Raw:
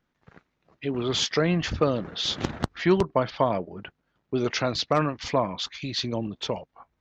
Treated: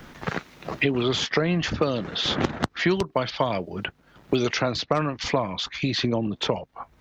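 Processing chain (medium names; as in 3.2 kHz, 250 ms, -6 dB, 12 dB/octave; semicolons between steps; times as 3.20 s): three bands compressed up and down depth 100%; trim +1 dB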